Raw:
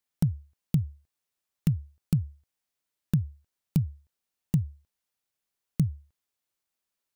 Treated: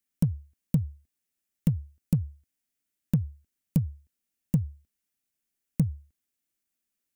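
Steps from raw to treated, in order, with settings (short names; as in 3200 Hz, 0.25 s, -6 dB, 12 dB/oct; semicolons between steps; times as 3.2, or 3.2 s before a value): graphic EQ 125/250/500/1000/4000 Hz -5/+6/-6/-11/-6 dB; in parallel at -5 dB: hard clip -22 dBFS, distortion -10 dB; on the sum: gain -1 dB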